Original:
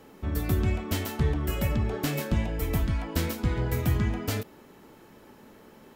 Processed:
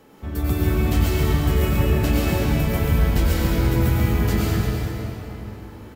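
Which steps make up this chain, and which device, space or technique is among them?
cave (delay 346 ms -11 dB; reverberation RT60 3.5 s, pre-delay 89 ms, DRR -6 dB)

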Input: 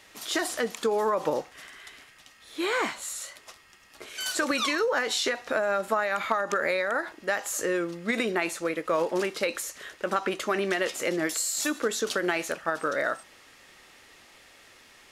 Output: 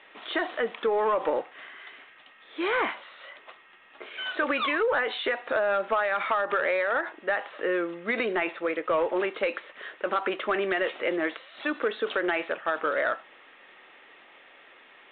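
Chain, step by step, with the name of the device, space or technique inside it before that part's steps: telephone (band-pass 330–3100 Hz; saturation -19.5 dBFS, distortion -18 dB; trim +3 dB; A-law 64 kbps 8 kHz)

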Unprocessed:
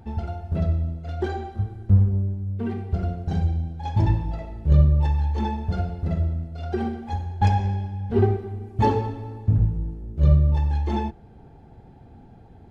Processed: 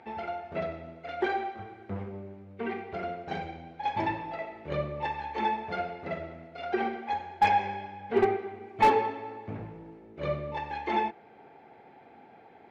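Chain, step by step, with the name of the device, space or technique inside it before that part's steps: megaphone (band-pass 480–3300 Hz; peaking EQ 2.2 kHz +10.5 dB 0.39 oct; hard clipper -18.5 dBFS, distortion -18 dB); trim +3.5 dB

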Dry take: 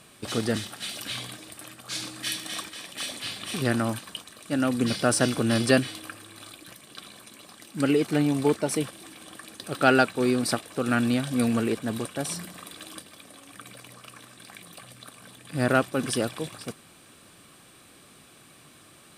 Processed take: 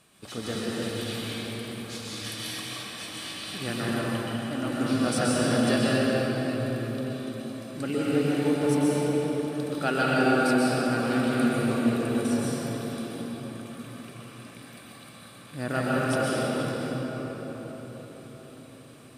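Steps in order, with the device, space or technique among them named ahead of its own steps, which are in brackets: cathedral (reverberation RT60 5.3 s, pre-delay 118 ms, DRR -7.5 dB); trim -8.5 dB

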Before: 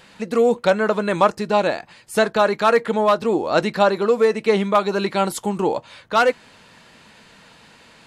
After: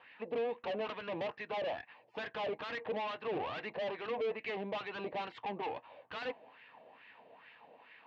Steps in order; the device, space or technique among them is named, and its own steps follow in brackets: wah-wah guitar rig (wah-wah 2.3 Hz 590–1900 Hz, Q 3.4; valve stage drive 38 dB, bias 0.45; cabinet simulation 96–3700 Hz, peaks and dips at 120 Hz +7 dB, 270 Hz +7 dB, 460 Hz +5 dB, 730 Hz +4 dB, 1.4 kHz -10 dB, 2.7 kHz +6 dB); trim +1 dB

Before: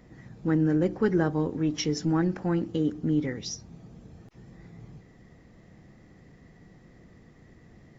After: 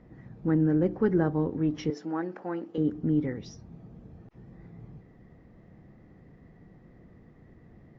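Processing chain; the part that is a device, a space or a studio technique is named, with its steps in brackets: 1.90–2.78 s: high-pass 420 Hz 12 dB/octave; through cloth (low-pass 6.4 kHz 12 dB/octave; treble shelf 2.9 kHz -17 dB)

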